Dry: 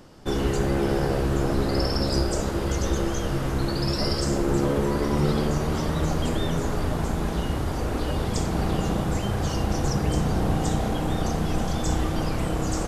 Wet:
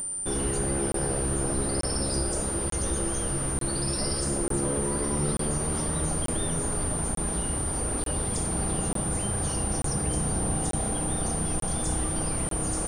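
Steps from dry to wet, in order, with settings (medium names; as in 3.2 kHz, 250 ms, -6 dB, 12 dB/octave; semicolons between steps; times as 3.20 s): in parallel at -3 dB: peak limiter -21 dBFS, peak gain reduction 10 dB; on the sum: upward compressor, threshold -39 dBFS; whistle 9.1 kHz -22 dBFS; crackling interface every 0.89 s, samples 1024, zero, from 0.92 s; trim -8 dB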